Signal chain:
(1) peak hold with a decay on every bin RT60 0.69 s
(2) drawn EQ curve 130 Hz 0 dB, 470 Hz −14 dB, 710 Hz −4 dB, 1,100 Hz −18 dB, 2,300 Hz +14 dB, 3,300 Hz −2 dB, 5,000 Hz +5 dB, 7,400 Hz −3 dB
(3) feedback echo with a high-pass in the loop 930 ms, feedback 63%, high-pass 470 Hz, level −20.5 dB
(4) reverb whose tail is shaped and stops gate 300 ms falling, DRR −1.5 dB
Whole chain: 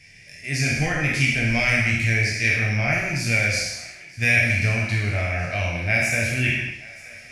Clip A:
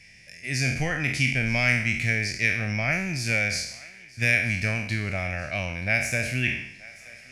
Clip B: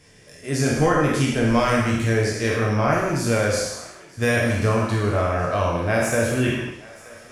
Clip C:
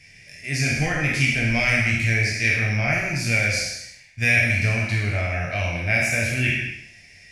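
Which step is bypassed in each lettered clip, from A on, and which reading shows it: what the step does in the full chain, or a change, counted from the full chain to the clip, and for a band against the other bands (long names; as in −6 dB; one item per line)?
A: 4, change in momentary loudness spread +3 LU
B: 2, 2 kHz band −10.0 dB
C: 3, change in momentary loudness spread −2 LU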